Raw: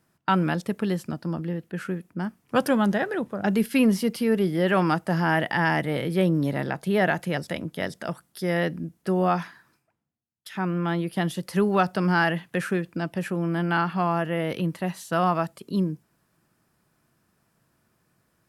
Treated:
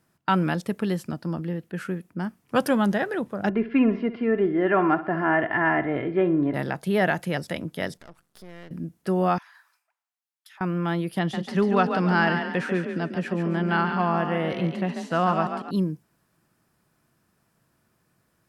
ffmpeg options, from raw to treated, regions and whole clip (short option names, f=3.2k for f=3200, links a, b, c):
-filter_complex "[0:a]asettb=1/sr,asplit=3[a][b][c];[a]atrim=end=3.494[d];[b]atrim=start=3.49:end=6.54,asetpts=PTS-STARTPTS,afade=t=in:d=0.004:c=qsin,afade=t=out:st=3.046:d=0.004:c=qsin,lowpass=f=2.2k:w=0.5412,lowpass=f=2.2k:w=1.3066,aecho=1:1:2.9:0.61,atrim=end_sample=134505,aecho=1:1:61|122|183|244:0.2|0.0938|0.0441|0.0207,atrim=end_sample=134505[e];[c]atrim=start=6.536[f];[d][e]acrossfade=d=0.004:c1=hsin:c2=qsin[g];[g][f]acrossfade=d=0.004:c1=qsin:c2=hsin,asettb=1/sr,asplit=3[h][i][j];[h]atrim=end=7.974[k];[i]atrim=start=7.97:end=8.71,asetpts=PTS-STARTPTS,afade=t=in:d=0.004:c=qsin,afade=t=out:st=0.736:d=0.004:c=qsin,highshelf=f=10k:g=-7.5,acompressor=threshold=-46dB:ratio=2.5:attack=3.2:release=140:knee=1:detection=peak,aeval=exprs='max(val(0),0)':c=same[l];[j]atrim=start=8.706[m];[k][l]acrossfade=d=0.004:c1=hsin:c2=qsin[n];[n][m]acrossfade=d=0.004:c1=qsin:c2=hsin,asettb=1/sr,asplit=3[o][p][q];[o]atrim=end=9.384[r];[p]atrim=start=9.38:end=10.61,asetpts=PTS-STARTPTS,afade=t=in:d=0.004:c=qsin,afade=t=out:st=1.226:d=0.004:c=qsin,highpass=f=790:w=0.5412,highpass=f=790:w=1.3066,acompressor=threshold=-47dB:ratio=16:attack=3.2:release=140:knee=1:detection=peak[s];[q]atrim=start=10.606[t];[r][s]acrossfade=d=0.004:c1=hsin:c2=qsin[u];[u][t]acrossfade=d=0.004:c1=qsin:c2=hsin,asettb=1/sr,asplit=3[v][w][x];[v]atrim=end=11.194[y];[w]atrim=start=11.19:end=15.71,asetpts=PTS-STARTPTS,afade=t=in:d=0.004:c=qsin,afade=t=out:st=4.516:d=0.004:c=qsin,lowpass=5.3k,asplit=6[z][aa][ab][ac][ad][ae];[aa]adelay=141,afreqshift=31,volume=-7dB[af];[ab]adelay=282,afreqshift=62,volume=-14.5dB[ag];[ac]adelay=423,afreqshift=93,volume=-22.1dB[ah];[ad]adelay=564,afreqshift=124,volume=-29.6dB[ai];[ae]adelay=705,afreqshift=155,volume=-37.1dB[aj];[z][af][ag][ah][ai][aj]amix=inputs=6:normalize=0,atrim=end_sample=199332[ak];[x]atrim=start=15.706[al];[y][ak]acrossfade=d=0.004:c1=hsin:c2=qsin[am];[am][al]acrossfade=d=0.004:c1=qsin:c2=hsin"